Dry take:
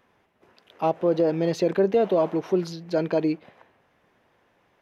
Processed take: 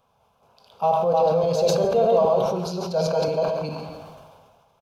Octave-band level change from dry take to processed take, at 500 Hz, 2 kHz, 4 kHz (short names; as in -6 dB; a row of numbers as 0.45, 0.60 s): +3.5, -2.0, +7.0 dB